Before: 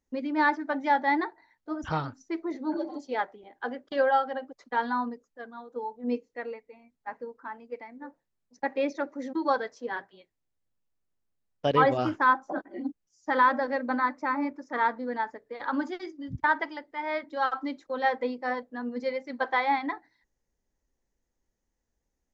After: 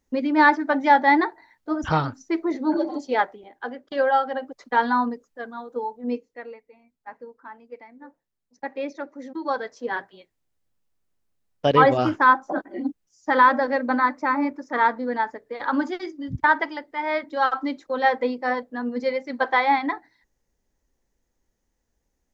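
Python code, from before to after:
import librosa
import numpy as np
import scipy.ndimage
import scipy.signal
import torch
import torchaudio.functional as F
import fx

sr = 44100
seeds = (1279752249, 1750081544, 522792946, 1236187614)

y = fx.gain(x, sr, db=fx.line((3.22, 8.0), (3.72, 0.5), (4.64, 7.5), (5.7, 7.5), (6.45, -2.0), (9.4, -2.0), (9.89, 6.0)))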